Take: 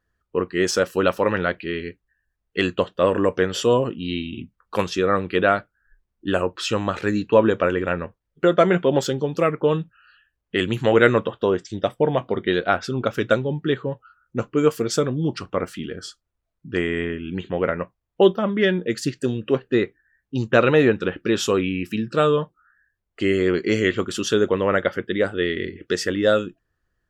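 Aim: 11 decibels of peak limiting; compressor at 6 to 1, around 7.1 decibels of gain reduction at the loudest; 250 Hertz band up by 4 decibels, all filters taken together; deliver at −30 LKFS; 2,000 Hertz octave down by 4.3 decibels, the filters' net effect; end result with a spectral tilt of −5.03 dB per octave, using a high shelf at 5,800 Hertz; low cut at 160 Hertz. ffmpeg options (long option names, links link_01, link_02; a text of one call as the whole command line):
ffmpeg -i in.wav -af "highpass=160,equalizer=frequency=250:width_type=o:gain=6.5,equalizer=frequency=2000:width_type=o:gain=-6.5,highshelf=frequency=5800:gain=5,acompressor=threshold=-16dB:ratio=6,volume=-2.5dB,alimiter=limit=-19dB:level=0:latency=1" out.wav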